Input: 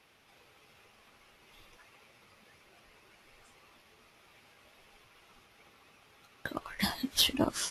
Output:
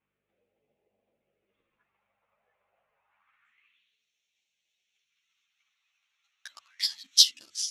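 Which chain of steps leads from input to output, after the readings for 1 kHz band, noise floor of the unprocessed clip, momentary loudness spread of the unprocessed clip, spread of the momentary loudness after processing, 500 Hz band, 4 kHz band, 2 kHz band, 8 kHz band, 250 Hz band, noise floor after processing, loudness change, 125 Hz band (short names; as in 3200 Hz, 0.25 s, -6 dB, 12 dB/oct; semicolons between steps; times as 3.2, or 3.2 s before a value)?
-21.0 dB, -63 dBFS, 14 LU, 11 LU, -31.5 dB, +7.0 dB, -8.5 dB, +9.0 dB, under -35 dB, -83 dBFS, +8.0 dB, under -35 dB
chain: Wiener smoothing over 9 samples; high shelf 2300 Hz +8.5 dB; de-hum 100.7 Hz, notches 3; transient shaper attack +11 dB, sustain +7 dB; hum 50 Hz, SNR 35 dB; phaser stages 2, 0.28 Hz, lowest notch 300–1200 Hz; band-pass sweep 580 Hz -> 5300 Hz, 2.91–4.05; ensemble effect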